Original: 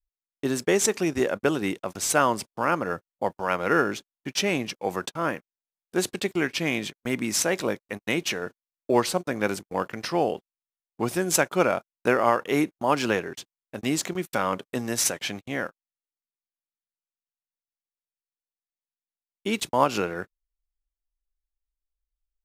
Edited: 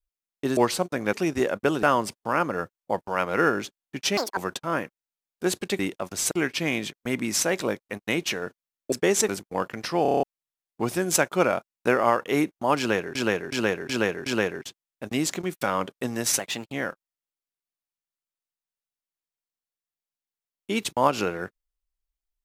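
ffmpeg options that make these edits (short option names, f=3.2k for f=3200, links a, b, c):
-filter_complex "[0:a]asplit=23[a][b][c][d][e][f][g][h][i][j][k][l][m][n][o][p][q][r][s][t][u][v][w];[a]atrim=end=0.572[x];[b]atrim=start=8.918:end=9.482[y];[c]atrim=start=0.928:end=1.632[z];[d]atrim=start=2.148:end=4.494[aa];[e]atrim=start=4.49:end=4.89,asetpts=PTS-STARTPTS,asetrate=87318,aresample=44100,atrim=end_sample=8909,asetpts=PTS-STARTPTS[ab];[f]atrim=start=4.886:end=6.312[ac];[g]atrim=start=1.628:end=2.152[ad];[h]atrim=start=6.308:end=8.922[ae];[i]atrim=start=0.568:end=0.932[af];[j]atrim=start=9.478:end=10.252[ag];[k]atrim=start=10.218:end=10.252[ah];[l]atrim=start=10.218:end=10.252[ai];[m]atrim=start=10.218:end=10.252[aj];[n]atrim=start=10.218:end=10.252[ak];[o]atrim=start=10.218:end=10.252[al];[p]atrim=start=10.218:end=10.252[am];[q]atrim=start=10.428:end=13.352[an];[r]atrim=start=12.978:end=13.352[ao];[s]atrim=start=12.978:end=13.352[ap];[t]atrim=start=12.978:end=13.352[aq];[u]atrim=start=12.978:end=15.114[ar];[v]atrim=start=15.11:end=15.49,asetpts=PTS-STARTPTS,asetrate=50274,aresample=44100,atrim=end_sample=14700,asetpts=PTS-STARTPTS[as];[w]atrim=start=15.486[at];[x][y]acrossfade=d=0.004:c1=hsin:c2=hsin[au];[au][z]acrossfade=d=0.004:c1=hsin:c2=hsin[av];[av][aa]acrossfade=d=0.004:c1=hsin:c2=hsin[aw];[aw][ab]acrossfade=d=0.004:c1=hsin:c2=hsin[ax];[ax][ac]acrossfade=d=0.004:c1=hsin:c2=hsin[ay];[ay][ad]acrossfade=d=0.004:c1=hsin:c2=hsin[az];[az][ae]acrossfade=d=0.004:c1=hsin:c2=hsin[ba];[ba][af]acrossfade=d=0.004:c1=hsin:c2=hsin[bb];[bb][ag]acrossfade=d=0.004:c1=hsin:c2=hsin[bc];[bc][ah]acrossfade=d=0.004:c1=hsin:c2=hsin[bd];[bd][ai]acrossfade=d=0.004:c1=hsin:c2=hsin[be];[be][aj]acrossfade=d=0.004:c1=hsin:c2=hsin[bf];[bf][ak]acrossfade=d=0.004:c1=hsin:c2=hsin[bg];[bg][al]acrossfade=d=0.004:c1=hsin:c2=hsin[bh];[bh][am]acrossfade=d=0.004:c1=hsin:c2=hsin[bi];[bi][an]acrossfade=d=0.004:c1=hsin:c2=hsin[bj];[bj][ao]acrossfade=d=0.004:c1=hsin:c2=hsin[bk];[bk][ap]acrossfade=d=0.004:c1=hsin:c2=hsin[bl];[bl][aq]acrossfade=d=0.004:c1=hsin:c2=hsin[bm];[bm][ar]acrossfade=d=0.004:c1=hsin:c2=hsin[bn];[bn][as]acrossfade=d=0.004:c1=hsin:c2=hsin[bo];[bo][at]acrossfade=d=0.004:c1=hsin:c2=hsin"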